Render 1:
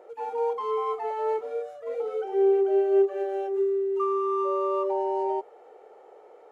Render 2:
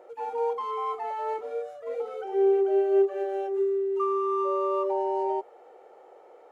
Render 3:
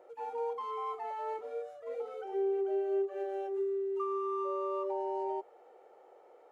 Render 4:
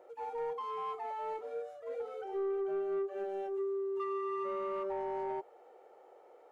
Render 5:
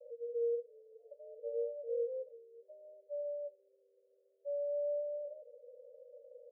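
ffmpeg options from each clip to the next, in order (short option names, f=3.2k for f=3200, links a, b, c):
-af "bandreject=f=430:w=12"
-filter_complex "[0:a]acrossover=split=260[a][b];[b]acompressor=threshold=-25dB:ratio=4[c];[a][c]amix=inputs=2:normalize=0,volume=-6.5dB"
-af "asoftclip=type=tanh:threshold=-30dB"
-af "asuperpass=centerf=530:order=12:qfactor=4,volume=7dB"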